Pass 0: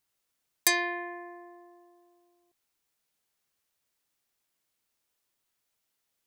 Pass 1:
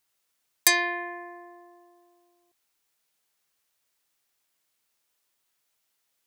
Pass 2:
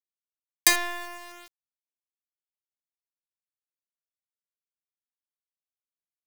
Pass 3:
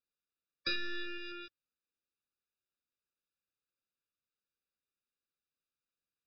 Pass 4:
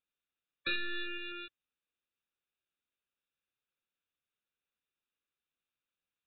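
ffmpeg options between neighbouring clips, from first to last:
-af "lowshelf=f=410:g=-6.5,volume=1.68"
-af "acrusher=bits=4:dc=4:mix=0:aa=0.000001"
-af "alimiter=limit=0.251:level=0:latency=1:release=296,aresample=11025,asoftclip=type=hard:threshold=0.0266,aresample=44100,afftfilt=real='re*eq(mod(floor(b*sr/1024/580),2),0)':imag='im*eq(mod(floor(b*sr/1024/580),2),0)':win_size=1024:overlap=0.75,volume=1.78"
-af "crystalizer=i=3:c=0,aresample=8000,aresample=44100"

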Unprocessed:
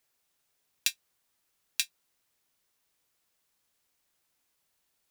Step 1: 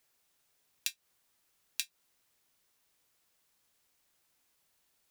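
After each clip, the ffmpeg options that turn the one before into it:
-af "acompressor=threshold=0.0224:ratio=6,volume=1.26"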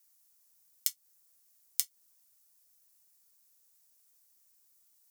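-af "aexciter=amount=5.7:drive=2.2:freq=4900,aeval=exprs='val(0)*sin(2*PI*440*n/s)':c=same,volume=0.562"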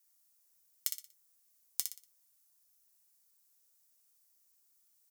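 -filter_complex "[0:a]asplit=2[s0][s1];[s1]aecho=0:1:60|120|180|240:0.501|0.175|0.0614|0.0215[s2];[s0][s2]amix=inputs=2:normalize=0,aeval=exprs='0.891*(cos(1*acos(clip(val(0)/0.891,-1,1)))-cos(1*PI/2))+0.0708*(cos(2*acos(clip(val(0)/0.891,-1,1)))-cos(2*PI/2))':c=same,volume=0.596"

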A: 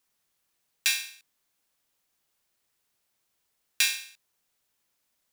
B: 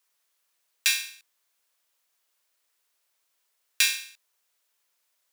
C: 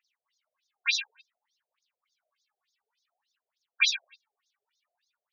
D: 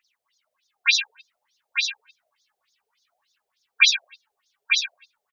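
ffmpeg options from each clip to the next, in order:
-af "highpass=510,bandreject=f=790:w=12,volume=1.26"
-af "aphaser=in_gain=1:out_gain=1:delay=2.9:decay=0.75:speed=0.56:type=triangular,equalizer=f=920:t=o:w=0.87:g=4.5,afftfilt=real='re*between(b*sr/1024,530*pow(5000/530,0.5+0.5*sin(2*PI*3.4*pts/sr))/1.41,530*pow(5000/530,0.5+0.5*sin(2*PI*3.4*pts/sr))*1.41)':imag='im*between(b*sr/1024,530*pow(5000/530,0.5+0.5*sin(2*PI*3.4*pts/sr))/1.41,530*pow(5000/530,0.5+0.5*sin(2*PI*3.4*pts/sr))*1.41)':win_size=1024:overlap=0.75"
-af "aecho=1:1:897:0.562,volume=2.51"

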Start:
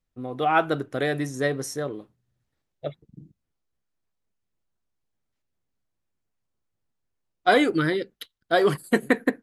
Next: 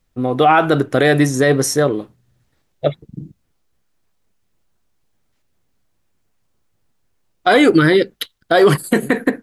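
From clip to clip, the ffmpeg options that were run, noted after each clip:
-af "alimiter=level_in=6.68:limit=0.891:release=50:level=0:latency=1,volume=0.794"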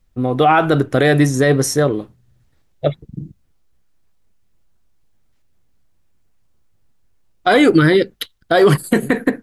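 -af "lowshelf=f=110:g=9.5,volume=0.891"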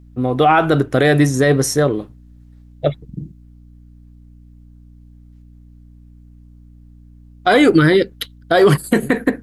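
-af "aeval=exprs='val(0)+0.00794*(sin(2*PI*60*n/s)+sin(2*PI*2*60*n/s)/2+sin(2*PI*3*60*n/s)/3+sin(2*PI*4*60*n/s)/4+sin(2*PI*5*60*n/s)/5)':c=same"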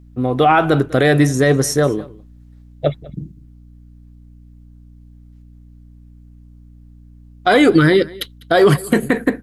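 -af "aecho=1:1:199:0.0794"

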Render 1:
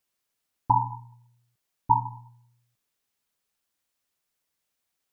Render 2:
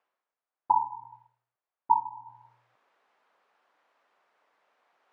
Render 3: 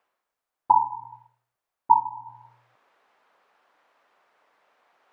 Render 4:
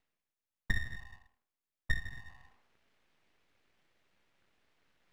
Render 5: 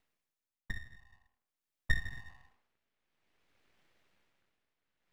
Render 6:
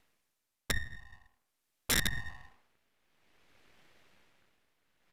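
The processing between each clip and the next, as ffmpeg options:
-af "highpass=680,areverse,acompressor=mode=upward:threshold=0.0141:ratio=2.5,areverse,lowpass=1100,volume=1.19"
-af "lowshelf=f=75:g=7,volume=1.88"
-af "acompressor=threshold=0.1:ratio=4,aeval=exprs='abs(val(0))':c=same,volume=0.473"
-af "tremolo=f=0.52:d=0.81,volume=1.26"
-af "aeval=exprs='(mod(33.5*val(0)+1,2)-1)/33.5':c=same,aresample=32000,aresample=44100,volume=2.82"

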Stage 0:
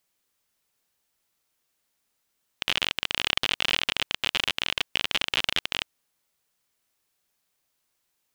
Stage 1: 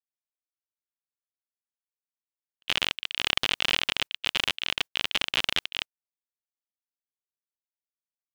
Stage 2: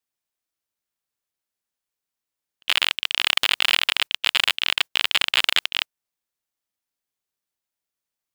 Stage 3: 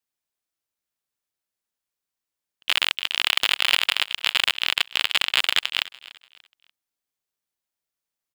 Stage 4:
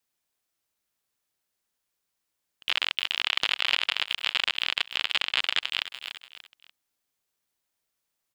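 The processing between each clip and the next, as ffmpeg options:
-af "agate=range=0.01:threshold=0.0282:ratio=16:detection=peak"
-af "apsyclip=3.98,aeval=exprs='1.06*(cos(1*acos(clip(val(0)/1.06,-1,1)))-cos(1*PI/2))+0.168*(cos(4*acos(clip(val(0)/1.06,-1,1)))-cos(4*PI/2))+0.15*(cos(6*acos(clip(val(0)/1.06,-1,1)))-cos(6*PI/2))+0.0266*(cos(8*acos(clip(val(0)/1.06,-1,1)))-cos(8*PI/2))':c=same,volume=0.708"
-af "aecho=1:1:292|584|876:0.112|0.037|0.0122,volume=0.891"
-filter_complex "[0:a]acrossover=split=6700[s0][s1];[s1]acompressor=threshold=0.00631:ratio=4:attack=1:release=60[s2];[s0][s2]amix=inputs=2:normalize=0,alimiter=limit=0.224:level=0:latency=1:release=145,volume=1.88"

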